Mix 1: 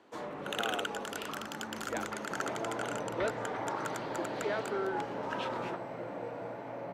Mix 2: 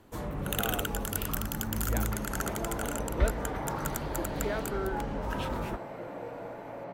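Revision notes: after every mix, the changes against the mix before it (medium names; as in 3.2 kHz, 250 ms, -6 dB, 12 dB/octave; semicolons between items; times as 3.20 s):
first sound: remove band-pass 340–5300 Hz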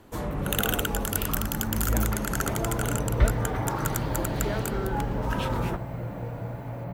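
first sound +5.0 dB; second sound: remove Chebyshev band-pass 360–6700 Hz, order 2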